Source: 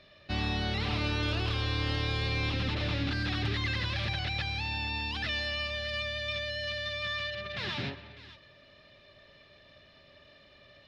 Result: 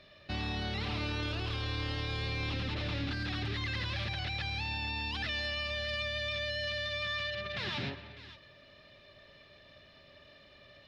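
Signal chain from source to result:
brickwall limiter −27 dBFS, peak gain reduction 6 dB

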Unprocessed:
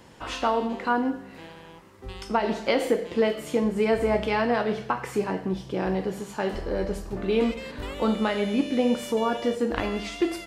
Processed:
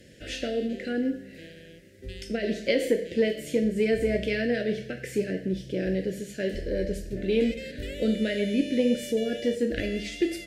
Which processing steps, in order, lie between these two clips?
Chebyshev band-stop filter 590–1,700 Hz, order 3
harmonic generator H 4 −41 dB, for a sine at −9 dBFS

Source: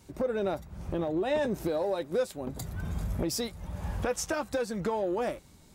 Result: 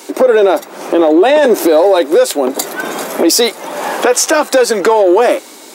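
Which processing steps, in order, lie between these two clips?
Butterworth high-pass 290 Hz 36 dB per octave
boost into a limiter +28 dB
level −1 dB

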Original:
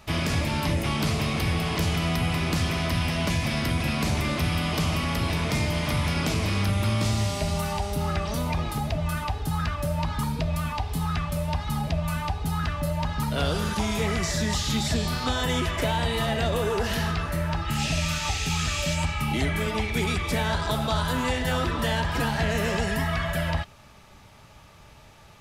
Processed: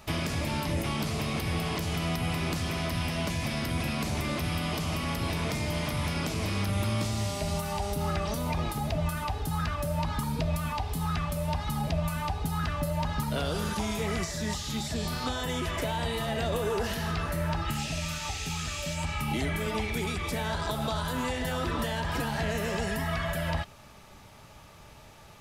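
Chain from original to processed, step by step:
RIAA equalisation recording
downward compressor, threshold −27 dBFS, peak gain reduction 8.5 dB
spectral tilt −3.5 dB per octave

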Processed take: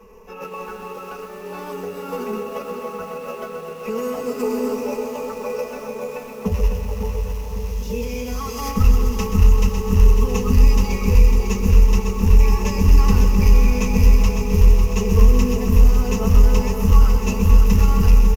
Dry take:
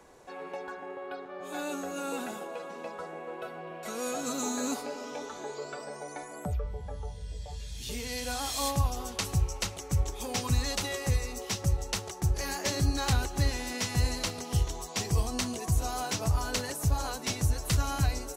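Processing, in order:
hum removal 56.74 Hz, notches 6
asymmetric clip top −25.5 dBFS
spectral tilt −3 dB per octave
comb filter 4.6 ms, depth 79%
log-companded quantiser 6 bits
EQ curve with evenly spaced ripples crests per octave 0.87, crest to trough 15 dB
formants moved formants +3 semitones
repeating echo 551 ms, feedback 56%, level −8.5 dB
feedback echo at a low word length 129 ms, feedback 80%, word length 7 bits, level −10 dB

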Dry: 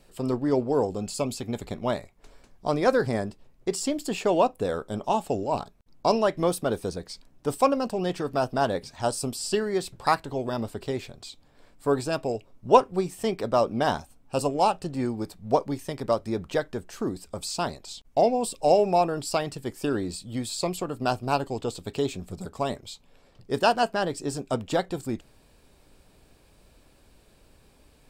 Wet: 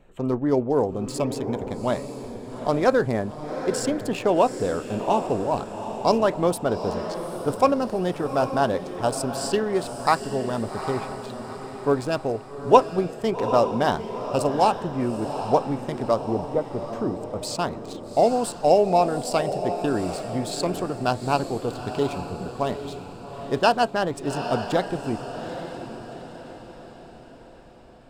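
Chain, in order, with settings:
adaptive Wiener filter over 9 samples
0:16.24–0:16.93: Savitzky-Golay smoothing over 65 samples
on a send: feedback delay with all-pass diffusion 814 ms, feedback 48%, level −9 dB
on the sum: level +2.5 dB

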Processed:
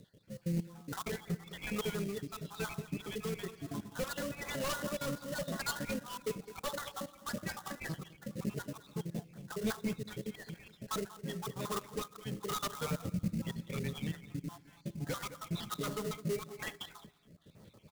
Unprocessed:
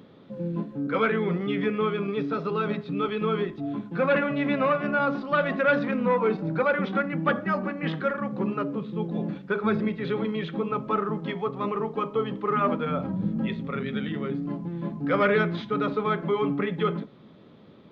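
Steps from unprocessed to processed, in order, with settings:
time-frequency cells dropped at random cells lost 60%
parametric band 260 Hz −12 dB 1.5 octaves
repeating echo 209 ms, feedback 33%, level −17 dB
on a send at −22.5 dB: convolution reverb RT60 1.5 s, pre-delay 3 ms
on the sum: hard clipping −30 dBFS, distortion −7 dB
rotating-speaker cabinet horn 1 Hz
in parallel at −5 dB: sample-rate reduction 2,400 Hz, jitter 20%
on the sum: bass and treble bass +6 dB, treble +11 dB
level −4 dB

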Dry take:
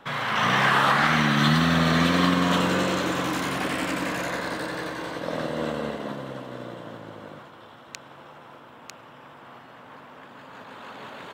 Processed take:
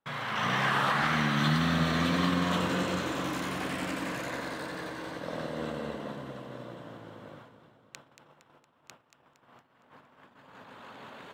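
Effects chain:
noise gate −44 dBFS, range −28 dB
low-shelf EQ 150 Hz +4 dB
echo with a time of its own for lows and highs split 840 Hz, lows 304 ms, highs 231 ms, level −11 dB
level −7.5 dB

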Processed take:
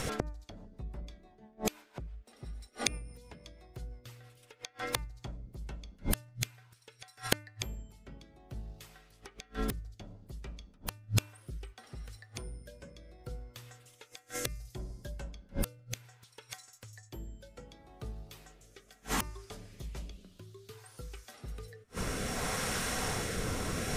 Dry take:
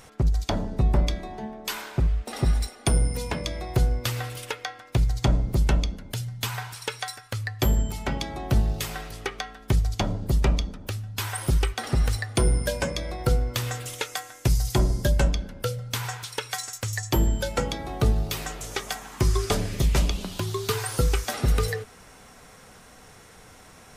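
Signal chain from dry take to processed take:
gate with flip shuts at −29 dBFS, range −38 dB
hum removal 299.4 Hz, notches 9
rotating-speaker cabinet horn 6 Hz, later 0.65 Hz, at 0:04.72
level +17.5 dB

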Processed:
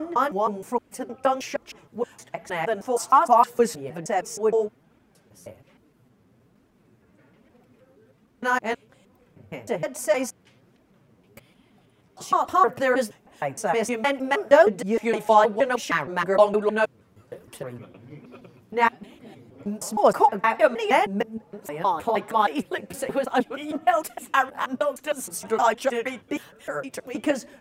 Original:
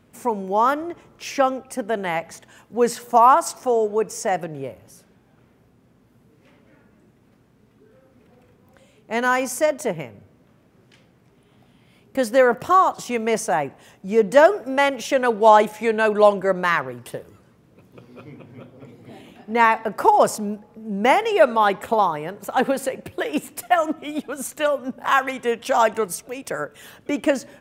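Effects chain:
slices reordered back to front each 156 ms, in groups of 6
flanger 1.2 Hz, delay 2.7 ms, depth 8.8 ms, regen +4%

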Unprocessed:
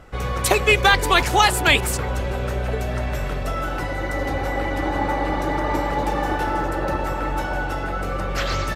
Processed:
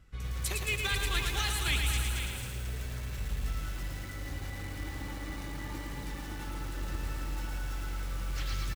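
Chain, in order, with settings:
guitar amp tone stack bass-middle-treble 6-0-2
single-tap delay 495 ms −9.5 dB
feedback echo at a low word length 111 ms, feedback 80%, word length 8 bits, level −4 dB
level +2 dB

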